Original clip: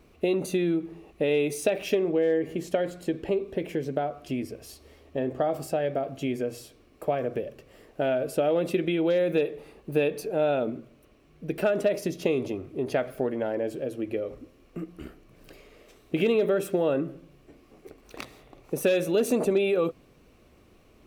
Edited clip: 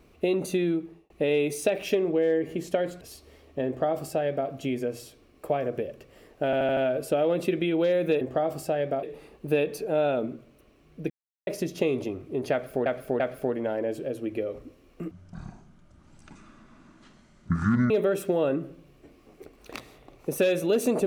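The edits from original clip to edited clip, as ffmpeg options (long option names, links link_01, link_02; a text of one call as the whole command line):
ffmpeg -i in.wav -filter_complex "[0:a]asplit=15[link_01][link_02][link_03][link_04][link_05][link_06][link_07][link_08][link_09][link_10][link_11][link_12][link_13][link_14][link_15];[link_01]atrim=end=1.1,asetpts=PTS-STARTPTS,afade=type=out:start_time=0.6:duration=0.5:curve=qsin[link_16];[link_02]atrim=start=1.1:end=3.012,asetpts=PTS-STARTPTS,afade=type=in:duration=0.004:curve=hsin[link_17];[link_03]atrim=start=4.588:end=8.112[link_18];[link_04]atrim=start=8.028:end=8.112[link_19];[link_05]atrim=start=8.028:end=8.112[link_20];[link_06]atrim=start=8.028:end=8.112[link_21];[link_07]atrim=start=8.028:end=9.472[link_22];[link_08]atrim=start=5.248:end=6.072[link_23];[link_09]atrim=start=9.468:end=11.54,asetpts=PTS-STARTPTS,afade=type=out:start_time=2.068:duration=0.004:curve=hsin[link_24];[link_10]atrim=start=11.54:end=11.91,asetpts=PTS-STARTPTS,volume=0[link_25];[link_11]atrim=start=11.91:end=13.302,asetpts=PTS-STARTPTS,afade=type=in:duration=0.004:curve=hsin[link_26];[link_12]atrim=start=12.958:end=13.302[link_27];[link_13]atrim=start=12.958:end=14.874[link_28];[link_14]atrim=start=14.87:end=16.35,asetpts=PTS-STARTPTS,asetrate=23373,aresample=44100,atrim=end_sample=123147,asetpts=PTS-STARTPTS[link_29];[link_15]atrim=start=16.346[link_30];[link_16][link_17]concat=n=2:v=0:a=1[link_31];[link_31][link_18]acrossfade=duration=0.004:curve1=hsin:curve2=hsin[link_32];[link_32][link_19]acrossfade=duration=0.004:curve1=hsin:curve2=hsin[link_33];[link_33][link_20]acrossfade=duration=0.004:curve1=hsin:curve2=hsin[link_34];[link_34][link_21]acrossfade=duration=0.004:curve1=hsin:curve2=hsin[link_35];[link_35][link_22]acrossfade=duration=0.004:curve1=hsin:curve2=hsin[link_36];[link_36][link_23]acrossfade=duration=0.004:curve1=hsin:curve2=hsin[link_37];[link_24][link_25][link_26]concat=n=3:v=0:a=1[link_38];[link_37][link_38]acrossfade=duration=0.004:curve1=hsin:curve2=hsin[link_39];[link_39][link_27]acrossfade=duration=0.004:curve1=hsin:curve2=hsin[link_40];[link_40][link_28]acrossfade=duration=0.004:curve1=hsin:curve2=hsin[link_41];[link_41][link_29]acrossfade=duration=0.004:curve1=hsin:curve2=hsin[link_42];[link_42][link_30]acrossfade=duration=0.004:curve1=hsin:curve2=hsin" out.wav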